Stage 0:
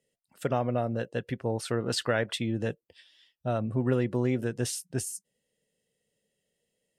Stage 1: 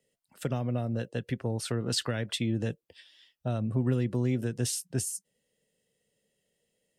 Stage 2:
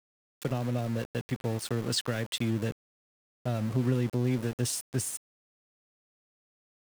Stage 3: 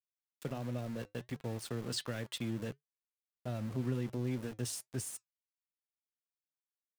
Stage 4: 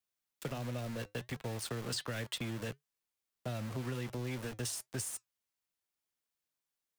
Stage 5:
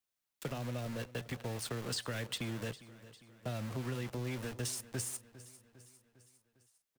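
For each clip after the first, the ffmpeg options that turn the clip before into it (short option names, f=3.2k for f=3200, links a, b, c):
-filter_complex "[0:a]acrossover=split=270|3000[a][b][c];[b]acompressor=threshold=-37dB:ratio=6[d];[a][d][c]amix=inputs=3:normalize=0,volume=2dB"
-af "aeval=exprs='val(0)*gte(abs(val(0)),0.0141)':c=same"
-af "flanger=delay=3.3:depth=1.6:regen=-82:speed=1.4:shape=sinusoidal,volume=-3.5dB"
-filter_complex "[0:a]acrossover=split=120|520|1700[a][b][c][d];[a]acompressor=threshold=-50dB:ratio=4[e];[b]acompressor=threshold=-50dB:ratio=4[f];[c]acompressor=threshold=-50dB:ratio=4[g];[d]acompressor=threshold=-43dB:ratio=4[h];[e][f][g][h]amix=inputs=4:normalize=0,volume=6dB"
-af "aecho=1:1:403|806|1209|1612|2015:0.133|0.0747|0.0418|0.0234|0.0131"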